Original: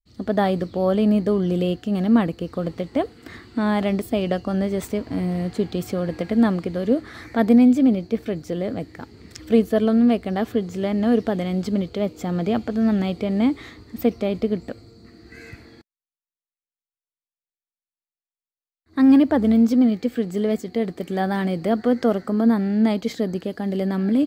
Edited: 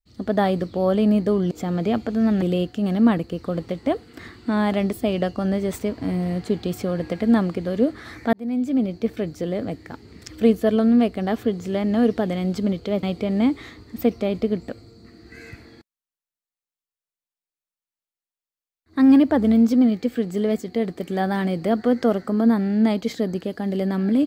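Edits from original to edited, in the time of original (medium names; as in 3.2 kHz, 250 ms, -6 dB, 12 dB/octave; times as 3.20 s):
7.42–8.13 s: fade in
12.12–13.03 s: move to 1.51 s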